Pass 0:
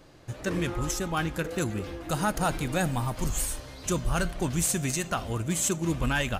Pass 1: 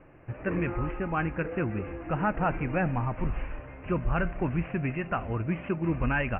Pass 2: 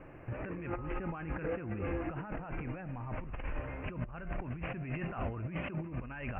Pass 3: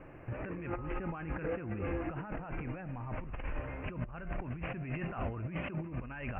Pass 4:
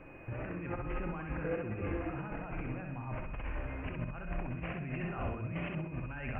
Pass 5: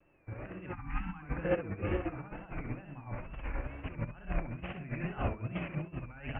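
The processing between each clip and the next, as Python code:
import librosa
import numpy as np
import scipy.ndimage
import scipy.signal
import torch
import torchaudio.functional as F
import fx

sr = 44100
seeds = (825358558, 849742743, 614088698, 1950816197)

y1 = scipy.signal.sosfilt(scipy.signal.butter(16, 2700.0, 'lowpass', fs=sr, output='sos'), x)
y2 = fx.over_compress(y1, sr, threshold_db=-36.0, ratio=-1.0)
y2 = F.gain(torch.from_numpy(y2), -3.0).numpy()
y3 = y2
y4 = y3 + 10.0 ** (-60.0 / 20.0) * np.sin(2.0 * np.pi * 2500.0 * np.arange(len(y3)) / sr)
y4 = fx.echo_feedback(y4, sr, ms=64, feedback_pct=30, wet_db=-4.0)
y4 = F.gain(torch.from_numpy(y4), -1.5).numpy()
y5 = fx.wow_flutter(y4, sr, seeds[0], rate_hz=2.1, depth_cents=120.0)
y5 = fx.spec_box(y5, sr, start_s=0.72, length_s=0.5, low_hz=320.0, high_hz=720.0, gain_db=-30)
y5 = fx.upward_expand(y5, sr, threshold_db=-48.0, expansion=2.5)
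y5 = F.gain(torch.from_numpy(y5), 7.5).numpy()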